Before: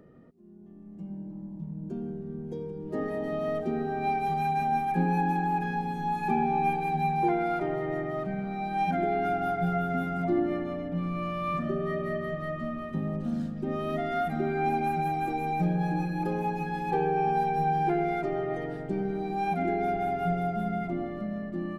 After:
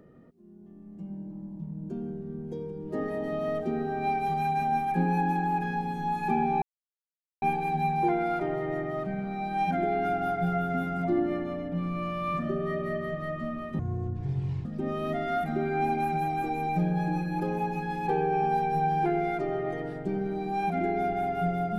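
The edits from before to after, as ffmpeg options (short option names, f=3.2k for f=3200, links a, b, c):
-filter_complex "[0:a]asplit=4[a][b][c][d];[a]atrim=end=6.62,asetpts=PTS-STARTPTS,afade=t=out:st=6.616:d=0.004:c=hsin,apad=pad_dur=0.8[e];[b]atrim=start=6.62:end=12.994,asetpts=PTS-STARTPTS,afade=t=in:d=0.004:c=hsin[f];[c]atrim=start=12.99:end=13.49,asetpts=PTS-STARTPTS,asetrate=25578,aresample=44100,atrim=end_sample=38017,asetpts=PTS-STARTPTS[g];[d]atrim=start=13.486[h];[e][f]concat=n=2:v=0:a=1[i];[i][g]acrossfade=d=0.004:c1=hsin:c2=hsin[j];[j][h]acrossfade=d=0.004:c1=hsin:c2=hsin"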